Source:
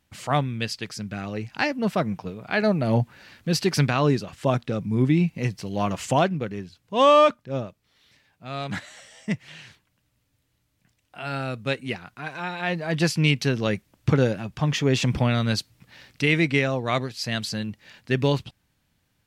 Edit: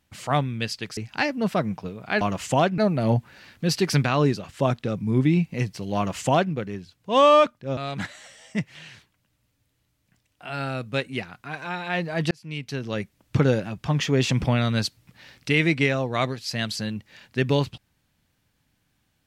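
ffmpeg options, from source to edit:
ffmpeg -i in.wav -filter_complex "[0:a]asplit=6[link_01][link_02][link_03][link_04][link_05][link_06];[link_01]atrim=end=0.972[link_07];[link_02]atrim=start=1.378:end=2.622[link_08];[link_03]atrim=start=5.798:end=6.372[link_09];[link_04]atrim=start=2.618:end=7.612[link_10];[link_05]atrim=start=8.498:end=13.04,asetpts=PTS-STARTPTS,afade=type=out:start_time=4.538:duration=0.004:curve=hsin[link_11];[link_06]atrim=start=13.04,asetpts=PTS-STARTPTS,afade=type=in:duration=1.06[link_12];[link_07][link_08]acrossfade=duration=0.004:curve1=hsin:curve2=hsin[link_13];[link_13][link_09]acrossfade=duration=0.004:curve1=hsin:curve2=hsin[link_14];[link_14][link_10]acrossfade=duration=0.004:curve1=hsin:curve2=hsin[link_15];[link_11][link_12]concat=n=2:v=0:a=1[link_16];[link_15][link_16]acrossfade=duration=0.004:curve1=hsin:curve2=hsin" out.wav

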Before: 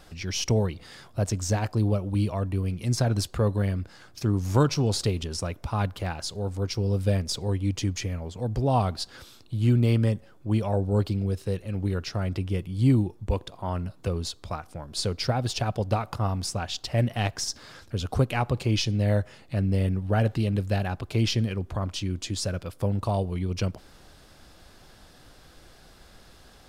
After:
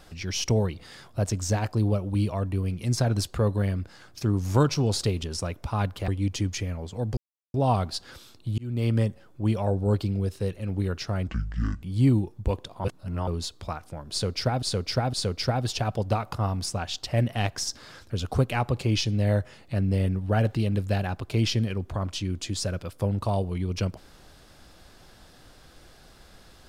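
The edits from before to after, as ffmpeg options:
ffmpeg -i in.wav -filter_complex "[0:a]asplit=10[link_01][link_02][link_03][link_04][link_05][link_06][link_07][link_08][link_09][link_10];[link_01]atrim=end=6.082[link_11];[link_02]atrim=start=7.508:end=8.6,asetpts=PTS-STARTPTS,afade=type=out:start_time=1.088:duration=0.004:curve=hsin,apad=pad_dur=0.37[link_12];[link_03]atrim=start=8.6:end=9.64,asetpts=PTS-STARTPTS,afade=type=in:duration=0.004:curve=hsin,afade=type=out:start_time=1.036:duration=0.004:curve=hsin[link_13];[link_04]atrim=start=9.64:end=12.344,asetpts=PTS-STARTPTS,afade=type=in:duration=0.39[link_14];[link_05]atrim=start=12.34:end=12.65,asetpts=PTS-STARTPTS,asetrate=25137,aresample=44100,atrim=end_sample=23984,asetpts=PTS-STARTPTS[link_15];[link_06]atrim=start=12.646:end=13.672[link_16];[link_07]atrim=start=13.668:end=14.102,asetpts=PTS-STARTPTS,areverse[link_17];[link_08]atrim=start=14.098:end=15.452[link_18];[link_09]atrim=start=14.938:end=15.452[link_19];[link_10]atrim=start=14.938[link_20];[link_12][link_13][link_14]concat=n=3:v=0:a=1[link_21];[link_11][link_21]acrossfade=duration=0.004:curve1=hsin:curve2=hsin[link_22];[link_22][link_15]acrossfade=duration=0.004:curve1=hsin:curve2=hsin[link_23];[link_23][link_16]acrossfade=duration=0.004:curve1=hsin:curve2=hsin[link_24];[link_24][link_17]acrossfade=duration=0.004:curve1=hsin:curve2=hsin[link_25];[link_25][link_18]acrossfade=duration=0.004:curve1=hsin:curve2=hsin[link_26];[link_26][link_19]acrossfade=duration=0.004:curve1=hsin:curve2=hsin[link_27];[link_27][link_20]acrossfade=duration=0.004:curve1=hsin:curve2=hsin" out.wav

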